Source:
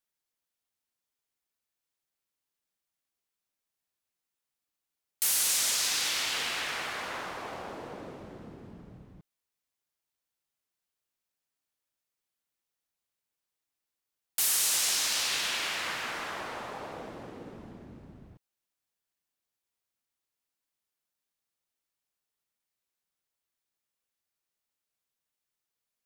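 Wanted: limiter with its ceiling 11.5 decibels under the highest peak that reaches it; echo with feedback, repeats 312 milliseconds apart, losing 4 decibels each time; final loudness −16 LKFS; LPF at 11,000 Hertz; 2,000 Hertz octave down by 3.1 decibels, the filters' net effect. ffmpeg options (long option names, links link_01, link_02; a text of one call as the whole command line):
ffmpeg -i in.wav -af "lowpass=11000,equalizer=frequency=2000:width_type=o:gain=-4,alimiter=level_in=3.5dB:limit=-24dB:level=0:latency=1,volume=-3.5dB,aecho=1:1:312|624|936|1248|1560|1872|2184|2496|2808:0.631|0.398|0.25|0.158|0.0994|0.0626|0.0394|0.0249|0.0157,volume=19dB" out.wav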